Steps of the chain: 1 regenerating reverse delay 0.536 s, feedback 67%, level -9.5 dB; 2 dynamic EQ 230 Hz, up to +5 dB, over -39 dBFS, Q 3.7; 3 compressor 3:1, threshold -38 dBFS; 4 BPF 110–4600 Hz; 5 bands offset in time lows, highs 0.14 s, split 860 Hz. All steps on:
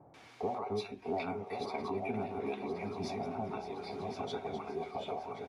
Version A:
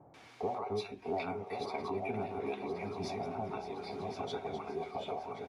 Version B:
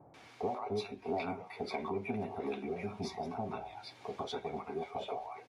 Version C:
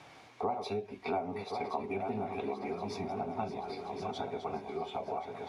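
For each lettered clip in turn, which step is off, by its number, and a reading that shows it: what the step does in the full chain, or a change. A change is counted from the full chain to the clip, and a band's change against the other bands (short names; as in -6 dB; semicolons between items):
2, 250 Hz band -2.0 dB; 1, momentary loudness spread change +1 LU; 5, echo-to-direct 6.5 dB to none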